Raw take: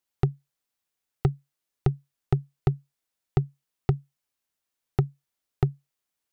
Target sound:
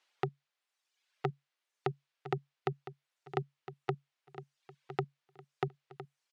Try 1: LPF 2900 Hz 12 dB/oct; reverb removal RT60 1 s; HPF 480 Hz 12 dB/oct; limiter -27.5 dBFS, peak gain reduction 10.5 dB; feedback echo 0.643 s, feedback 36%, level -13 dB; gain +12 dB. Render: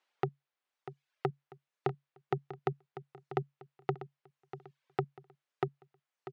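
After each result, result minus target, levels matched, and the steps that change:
echo 0.367 s early; 4000 Hz band -4.5 dB
change: feedback echo 1.01 s, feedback 36%, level -13 dB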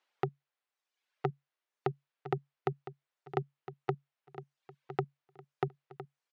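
4000 Hz band -5.0 dB
add after HPF: high shelf 2200 Hz +9.5 dB

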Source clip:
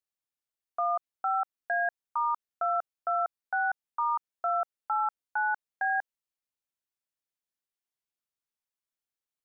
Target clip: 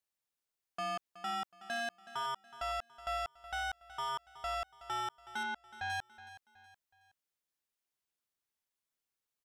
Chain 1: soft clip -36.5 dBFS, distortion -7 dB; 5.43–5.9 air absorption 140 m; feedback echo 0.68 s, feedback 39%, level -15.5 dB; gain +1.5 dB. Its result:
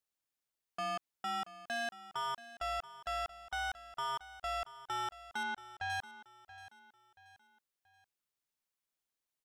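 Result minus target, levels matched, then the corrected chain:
echo 0.309 s late
soft clip -36.5 dBFS, distortion -7 dB; 5.43–5.9 air absorption 140 m; feedback echo 0.371 s, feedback 39%, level -15.5 dB; gain +1.5 dB

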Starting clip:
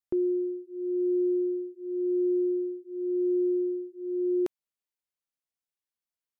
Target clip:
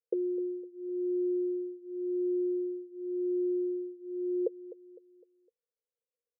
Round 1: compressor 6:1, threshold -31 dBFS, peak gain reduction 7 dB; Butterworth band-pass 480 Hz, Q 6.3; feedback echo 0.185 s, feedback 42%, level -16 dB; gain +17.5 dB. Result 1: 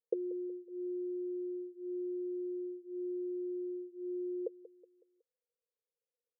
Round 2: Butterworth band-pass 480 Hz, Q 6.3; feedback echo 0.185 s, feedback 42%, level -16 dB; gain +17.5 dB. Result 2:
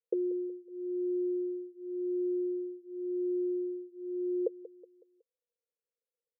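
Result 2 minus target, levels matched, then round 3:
echo 69 ms early
Butterworth band-pass 480 Hz, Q 6.3; feedback echo 0.254 s, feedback 42%, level -16 dB; gain +17.5 dB

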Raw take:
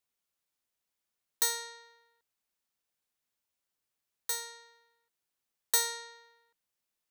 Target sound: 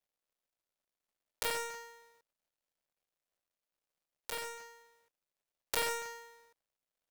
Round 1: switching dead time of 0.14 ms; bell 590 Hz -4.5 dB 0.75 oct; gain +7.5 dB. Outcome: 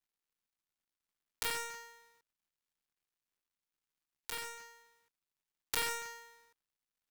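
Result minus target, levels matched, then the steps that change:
500 Hz band -6.0 dB
change: bell 590 Hz +7.5 dB 0.75 oct

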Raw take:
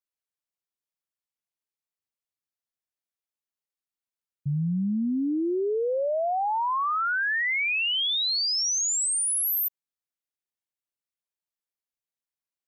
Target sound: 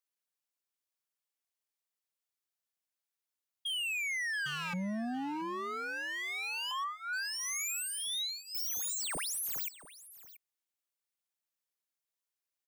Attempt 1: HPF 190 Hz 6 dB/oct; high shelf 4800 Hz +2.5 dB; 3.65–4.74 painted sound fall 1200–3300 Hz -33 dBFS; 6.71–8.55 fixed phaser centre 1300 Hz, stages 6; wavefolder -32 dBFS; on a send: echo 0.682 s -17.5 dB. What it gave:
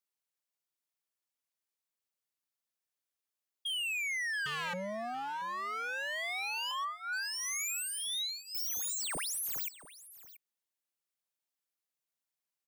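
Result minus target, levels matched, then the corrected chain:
250 Hz band -10.5 dB
HPF 390 Hz 6 dB/oct; high shelf 4800 Hz +2.5 dB; 3.65–4.74 painted sound fall 1200–3300 Hz -33 dBFS; 6.71–8.55 fixed phaser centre 1300 Hz, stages 6; wavefolder -32 dBFS; on a send: echo 0.682 s -17.5 dB

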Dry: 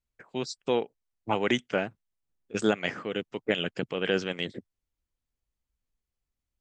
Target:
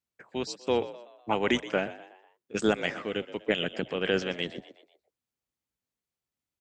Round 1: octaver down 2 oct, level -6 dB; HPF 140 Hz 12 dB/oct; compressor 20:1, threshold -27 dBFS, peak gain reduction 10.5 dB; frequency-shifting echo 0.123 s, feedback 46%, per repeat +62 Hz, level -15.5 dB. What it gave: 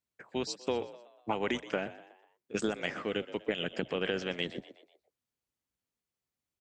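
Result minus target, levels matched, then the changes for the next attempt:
compressor: peak gain reduction +10.5 dB
remove: compressor 20:1, threshold -27 dBFS, peak gain reduction 10.5 dB

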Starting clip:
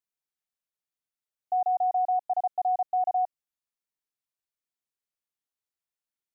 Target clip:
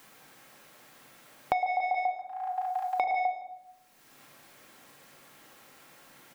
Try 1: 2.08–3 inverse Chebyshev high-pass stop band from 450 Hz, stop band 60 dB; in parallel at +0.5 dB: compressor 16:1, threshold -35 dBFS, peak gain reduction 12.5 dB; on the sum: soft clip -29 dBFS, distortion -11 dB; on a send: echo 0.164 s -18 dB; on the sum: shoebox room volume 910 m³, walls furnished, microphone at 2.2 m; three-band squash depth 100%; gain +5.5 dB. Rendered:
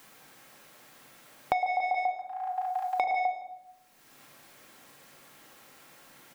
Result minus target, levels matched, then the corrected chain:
compressor: peak gain reduction -8.5 dB
2.08–3 inverse Chebyshev high-pass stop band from 450 Hz, stop band 60 dB; in parallel at +0.5 dB: compressor 16:1, threshold -44 dBFS, peak gain reduction 20.5 dB; on the sum: soft clip -29 dBFS, distortion -12 dB; on a send: echo 0.164 s -18 dB; on the sum: shoebox room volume 910 m³, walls furnished, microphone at 2.2 m; three-band squash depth 100%; gain +5.5 dB

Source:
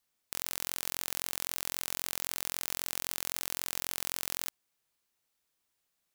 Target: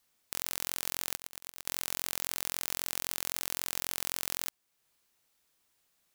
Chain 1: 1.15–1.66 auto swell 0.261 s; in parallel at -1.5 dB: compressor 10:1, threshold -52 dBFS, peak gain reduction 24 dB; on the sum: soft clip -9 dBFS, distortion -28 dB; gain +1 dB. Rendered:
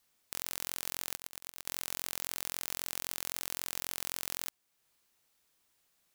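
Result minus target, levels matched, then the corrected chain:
soft clip: distortion +15 dB
1.15–1.66 auto swell 0.261 s; in parallel at -1.5 dB: compressor 10:1, threshold -52 dBFS, peak gain reduction 24 dB; on the sum: soft clip -1 dBFS, distortion -43 dB; gain +1 dB

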